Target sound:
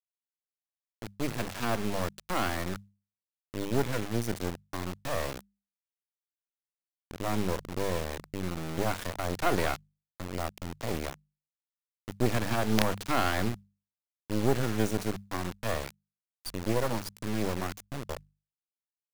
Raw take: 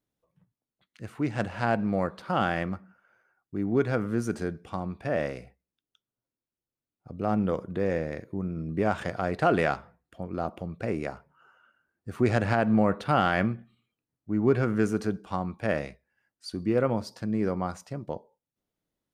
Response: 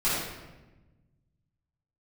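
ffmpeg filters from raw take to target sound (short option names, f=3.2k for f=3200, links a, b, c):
-filter_complex "[0:a]acrossover=split=210|490|3800[a][b][c][d];[d]acontrast=45[e];[a][b][c][e]amix=inputs=4:normalize=0,acrusher=bits=3:dc=4:mix=0:aa=0.000001,bandreject=f=50:t=h:w=6,bandreject=f=100:t=h:w=6,bandreject=f=150:t=h:w=6,bandreject=f=200:t=h:w=6,acrusher=bits=8:mode=log:mix=0:aa=0.000001"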